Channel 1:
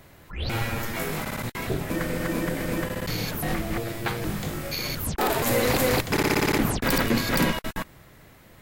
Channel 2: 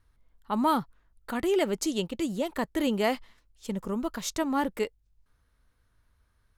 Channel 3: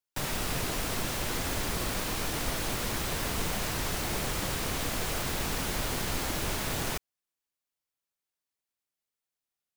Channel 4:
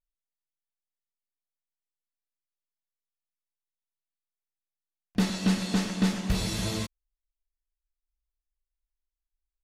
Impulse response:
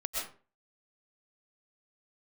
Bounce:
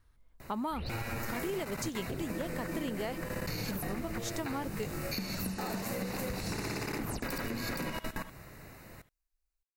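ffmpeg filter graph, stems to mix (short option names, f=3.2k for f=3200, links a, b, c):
-filter_complex "[0:a]alimiter=limit=-16dB:level=0:latency=1:release=66,adelay=400,volume=0.5dB,asplit=2[a][b];[b]volume=-17.5dB[c];[1:a]volume=0dB,asplit=2[d][e];[2:a]alimiter=level_in=2.5dB:limit=-24dB:level=0:latency=1,volume=-2.5dB,adelay=700,volume=-11dB[f];[3:a]volume=2.5dB[g];[e]apad=whole_len=461555[h];[f][h]sidechaingate=range=-33dB:threshold=-56dB:ratio=16:detection=peak[i];[a][i][g]amix=inputs=3:normalize=0,asuperstop=centerf=3300:order=4:qfactor=4.2,acompressor=threshold=-26dB:ratio=6,volume=0dB[j];[c]aecho=0:1:73:1[k];[d][j][k]amix=inputs=3:normalize=0,acompressor=threshold=-33dB:ratio=6"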